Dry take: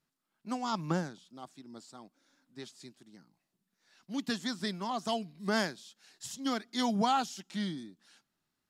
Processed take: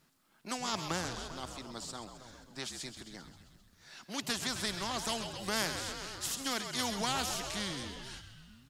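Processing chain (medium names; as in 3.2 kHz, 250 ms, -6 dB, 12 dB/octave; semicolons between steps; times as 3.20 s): on a send: frequency-shifting echo 132 ms, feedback 64%, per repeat -61 Hz, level -14 dB; on the sum: spectrum-flattening compressor 2:1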